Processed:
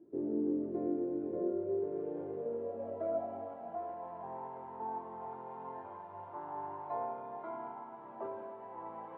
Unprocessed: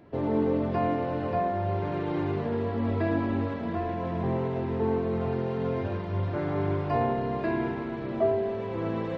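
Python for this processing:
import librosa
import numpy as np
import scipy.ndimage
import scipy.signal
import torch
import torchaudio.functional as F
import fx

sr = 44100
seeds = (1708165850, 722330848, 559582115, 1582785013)

y = fx.formant_shift(x, sr, semitones=-3)
y = fx.filter_sweep_bandpass(y, sr, from_hz=350.0, to_hz=900.0, start_s=1.33, end_s=4.18, q=7.4)
y = y * 10.0 ** (3.0 / 20.0)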